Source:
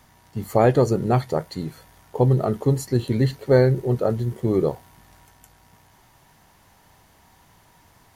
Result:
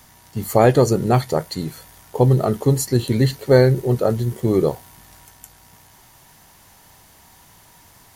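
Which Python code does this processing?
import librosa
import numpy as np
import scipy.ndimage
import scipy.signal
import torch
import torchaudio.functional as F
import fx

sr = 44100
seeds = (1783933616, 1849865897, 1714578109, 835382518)

y = fx.high_shelf(x, sr, hz=3900.0, db=9.0)
y = F.gain(torch.from_numpy(y), 3.0).numpy()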